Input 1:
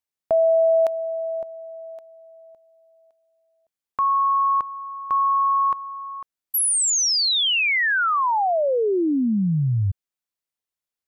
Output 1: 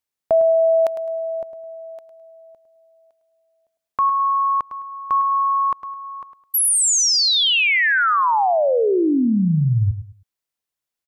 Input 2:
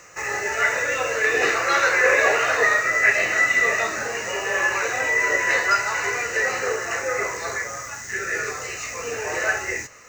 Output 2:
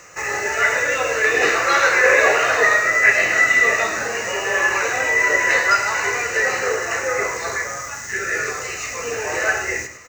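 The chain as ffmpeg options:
-af "aecho=1:1:105|210|315:0.282|0.0761|0.0205,volume=3dB"

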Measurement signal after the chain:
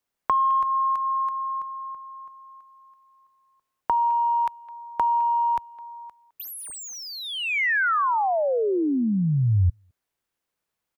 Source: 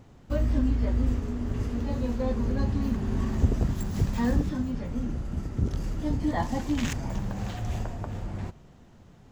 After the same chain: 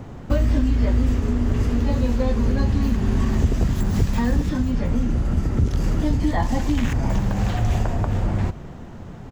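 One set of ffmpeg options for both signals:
-filter_complex "[0:a]acrossover=split=2200[a][b];[a]acontrast=77[c];[b]asoftclip=type=tanh:threshold=-37dB[d];[c][d]amix=inputs=2:normalize=0,acrossover=split=83|2200[e][f][g];[e]acompressor=threshold=-29dB:ratio=4[h];[f]acompressor=threshold=-32dB:ratio=4[i];[g]acompressor=threshold=-46dB:ratio=4[j];[h][i][j]amix=inputs=3:normalize=0,asplit=2[k][l];[l]adelay=210,highpass=300,lowpass=3.4k,asoftclip=type=hard:threshold=-23dB,volume=-19dB[m];[k][m]amix=inputs=2:normalize=0,volume=9dB"

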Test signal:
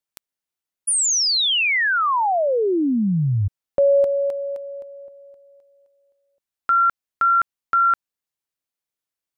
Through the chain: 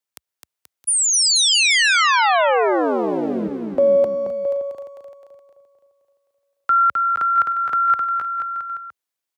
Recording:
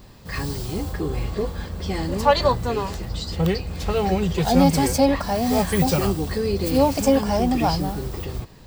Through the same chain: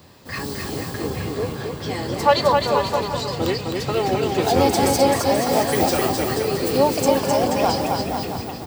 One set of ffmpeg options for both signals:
-filter_complex "[0:a]acrossover=split=290|1700|2200[a][b][c][d];[a]aeval=exprs='abs(val(0))':c=same[e];[e][b][c][d]amix=inputs=4:normalize=0,highpass=f=67:w=0.5412,highpass=f=67:w=1.3066,aecho=1:1:260|481|668.8|828.5|964.2:0.631|0.398|0.251|0.158|0.1,volume=1.5dB"

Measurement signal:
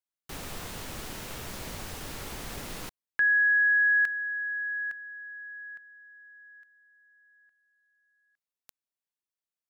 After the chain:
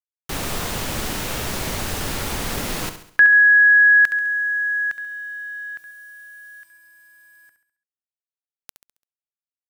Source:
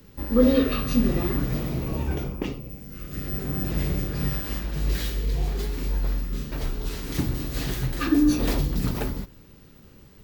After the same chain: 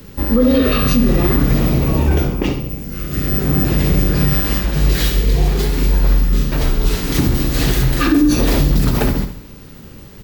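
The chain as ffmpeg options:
-af "acrusher=bits=10:mix=0:aa=0.000001,aecho=1:1:68|136|204|272|340:0.316|0.145|0.0669|0.0308|0.0142,alimiter=level_in=16.5dB:limit=-1dB:release=50:level=0:latency=1,volume=-4dB"

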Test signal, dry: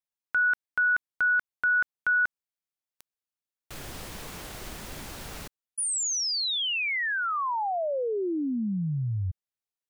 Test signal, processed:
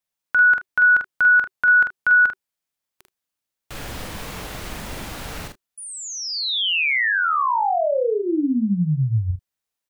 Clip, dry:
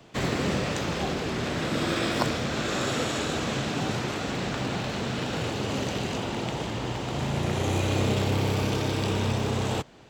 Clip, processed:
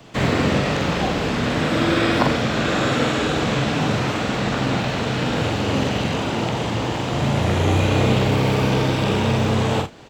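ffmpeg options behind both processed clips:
-filter_complex "[0:a]bandreject=f=380:w=12,acrossover=split=3900[a][b];[b]acompressor=threshold=-46dB:ratio=4:attack=1:release=60[c];[a][c]amix=inputs=2:normalize=0,asplit=2[d][e];[e]aecho=0:1:45|78:0.596|0.141[f];[d][f]amix=inputs=2:normalize=0,volume=7dB"

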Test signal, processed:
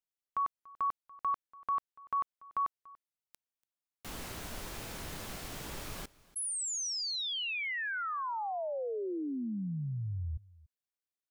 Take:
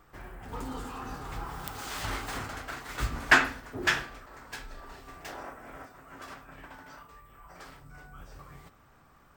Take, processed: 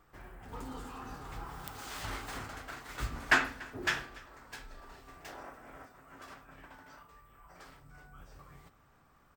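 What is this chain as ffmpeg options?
-af "aecho=1:1:288:0.0794,volume=-5.5dB"

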